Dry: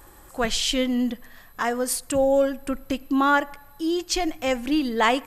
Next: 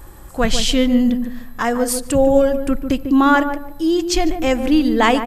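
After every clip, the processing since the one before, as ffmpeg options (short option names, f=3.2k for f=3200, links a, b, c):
-filter_complex "[0:a]lowshelf=f=240:g=10,asplit=2[a][b];[b]adelay=147,lowpass=f=830:p=1,volume=-6.5dB,asplit=2[c][d];[d]adelay=147,lowpass=f=830:p=1,volume=0.3,asplit=2[e][f];[f]adelay=147,lowpass=f=830:p=1,volume=0.3,asplit=2[g][h];[h]adelay=147,lowpass=f=830:p=1,volume=0.3[i];[c][e][g][i]amix=inputs=4:normalize=0[j];[a][j]amix=inputs=2:normalize=0,volume=4dB"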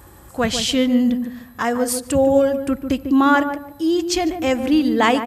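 -af "highpass=f=58:w=0.5412,highpass=f=58:w=1.3066,volume=-1.5dB"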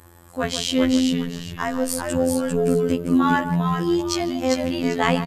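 -filter_complex "[0:a]asplit=5[a][b][c][d][e];[b]adelay=397,afreqshift=-110,volume=-4dB[f];[c]adelay=794,afreqshift=-220,volume=-13.9dB[g];[d]adelay=1191,afreqshift=-330,volume=-23.8dB[h];[e]adelay=1588,afreqshift=-440,volume=-33.7dB[i];[a][f][g][h][i]amix=inputs=5:normalize=0,afftfilt=real='hypot(re,im)*cos(PI*b)':imag='0':win_size=2048:overlap=0.75,volume=-1dB"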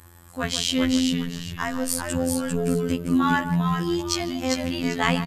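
-af "equalizer=f=490:t=o:w=1.9:g=-7.5,volume=1dB"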